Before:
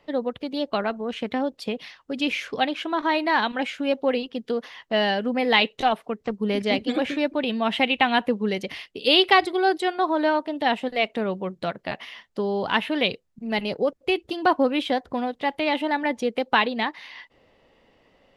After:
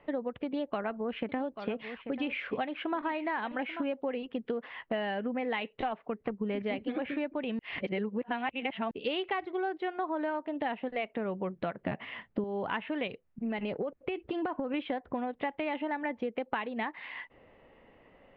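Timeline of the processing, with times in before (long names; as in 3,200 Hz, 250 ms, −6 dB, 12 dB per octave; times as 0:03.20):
0:00.45–0:03.84: single-tap delay 838 ms −15 dB
0:07.59–0:08.91: reverse
0:11.81–0:12.44: parametric band 140 Hz +11.5 dB 2.9 octaves
0:13.07–0:14.74: downward compressor, threshold −26 dBFS
whole clip: low-pass filter 2,600 Hz 24 dB per octave; downward compressor 10 to 1, threshold −31 dBFS; level +1 dB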